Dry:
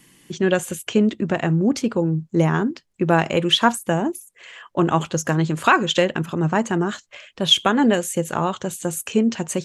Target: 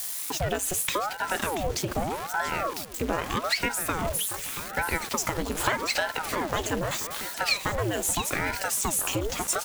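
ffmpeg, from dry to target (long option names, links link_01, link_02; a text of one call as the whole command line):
ffmpeg -i in.wav -af "aeval=exprs='val(0)+0.5*0.0596*sgn(val(0))':channel_layout=same,highshelf=frequency=7200:gain=5.5,bandreject=frequency=152.9:width_type=h:width=4,bandreject=frequency=305.8:width_type=h:width=4,bandreject=frequency=458.7:width_type=h:width=4,bandreject=frequency=611.6:width_type=h:width=4,bandreject=frequency=764.5:width_type=h:width=4,aeval=exprs='val(0)*gte(abs(val(0)),0.0501)':channel_layout=same,acompressor=threshold=-20dB:ratio=6,lowshelf=frequency=170:gain=-10.5,aecho=1:1:682|1364|2046:0.299|0.0866|0.0251,aeval=exprs='val(0)*sin(2*PI*650*n/s+650*0.85/0.82*sin(2*PI*0.82*n/s))':channel_layout=same" out.wav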